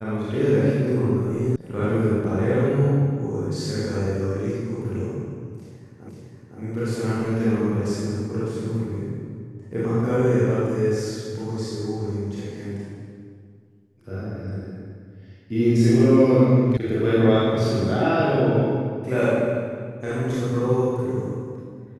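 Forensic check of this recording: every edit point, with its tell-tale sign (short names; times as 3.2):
1.56 sound cut off
6.09 repeat of the last 0.51 s
16.77 sound cut off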